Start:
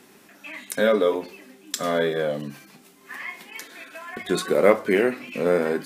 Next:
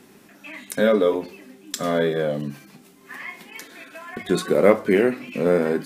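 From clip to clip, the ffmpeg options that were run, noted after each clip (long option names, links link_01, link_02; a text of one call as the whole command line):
ffmpeg -i in.wav -af "lowshelf=frequency=320:gain=8,volume=-1dB" out.wav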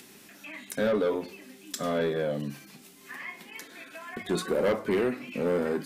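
ffmpeg -i in.wav -filter_complex "[0:a]acrossover=split=2100[link_01][link_02];[link_02]acompressor=mode=upward:threshold=-40dB:ratio=2.5[link_03];[link_01][link_03]amix=inputs=2:normalize=0,asoftclip=type=tanh:threshold=-15.5dB,volume=-4.5dB" out.wav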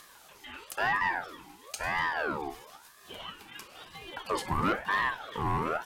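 ffmpeg -i in.wav -af "aecho=1:1:243:0.0944,aeval=exprs='val(0)*sin(2*PI*1000*n/s+1000*0.45/1*sin(2*PI*1*n/s))':channel_layout=same" out.wav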